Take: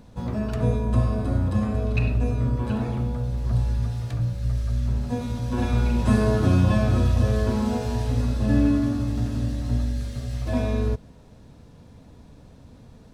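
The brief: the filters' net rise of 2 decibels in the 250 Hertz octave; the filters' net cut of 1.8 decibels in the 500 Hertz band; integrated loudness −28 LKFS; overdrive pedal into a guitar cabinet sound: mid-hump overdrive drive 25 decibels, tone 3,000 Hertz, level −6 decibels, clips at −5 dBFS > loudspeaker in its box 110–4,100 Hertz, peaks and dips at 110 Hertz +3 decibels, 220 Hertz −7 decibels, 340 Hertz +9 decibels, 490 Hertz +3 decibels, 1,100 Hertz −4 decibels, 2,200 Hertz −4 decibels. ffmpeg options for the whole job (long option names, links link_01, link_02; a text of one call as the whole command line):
ffmpeg -i in.wav -filter_complex "[0:a]equalizer=frequency=250:width_type=o:gain=6,equalizer=frequency=500:width_type=o:gain=-8.5,asplit=2[link_01][link_02];[link_02]highpass=frequency=720:poles=1,volume=25dB,asoftclip=type=tanh:threshold=-5dB[link_03];[link_01][link_03]amix=inputs=2:normalize=0,lowpass=frequency=3000:poles=1,volume=-6dB,highpass=110,equalizer=frequency=110:width_type=q:width=4:gain=3,equalizer=frequency=220:width_type=q:width=4:gain=-7,equalizer=frequency=340:width_type=q:width=4:gain=9,equalizer=frequency=490:width_type=q:width=4:gain=3,equalizer=frequency=1100:width_type=q:width=4:gain=-4,equalizer=frequency=2200:width_type=q:width=4:gain=-4,lowpass=frequency=4100:width=0.5412,lowpass=frequency=4100:width=1.3066,volume=-9.5dB" out.wav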